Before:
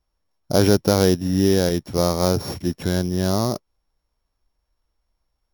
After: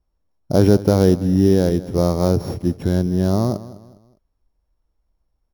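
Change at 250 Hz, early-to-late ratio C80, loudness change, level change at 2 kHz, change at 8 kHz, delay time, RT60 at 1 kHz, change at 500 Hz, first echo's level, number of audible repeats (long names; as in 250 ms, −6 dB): +3.5 dB, no reverb audible, +2.5 dB, −4.5 dB, −7.0 dB, 204 ms, no reverb audible, +2.0 dB, −17.0 dB, 2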